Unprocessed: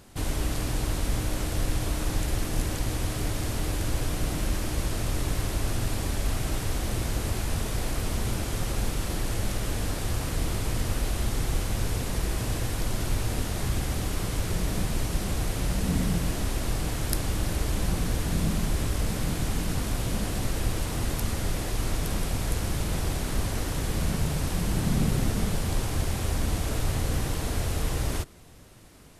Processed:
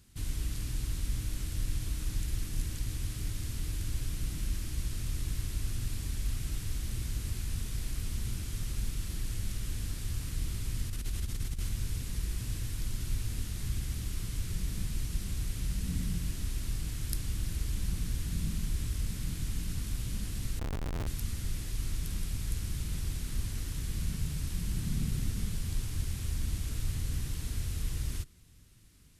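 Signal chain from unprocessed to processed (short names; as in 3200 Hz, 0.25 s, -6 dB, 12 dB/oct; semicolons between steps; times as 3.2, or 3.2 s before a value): passive tone stack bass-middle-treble 6-0-2; 10.89–11.69 negative-ratio compressor -39 dBFS, ratio -0.5; 20.59–21.07 Schmitt trigger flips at -43.5 dBFS; gain +7 dB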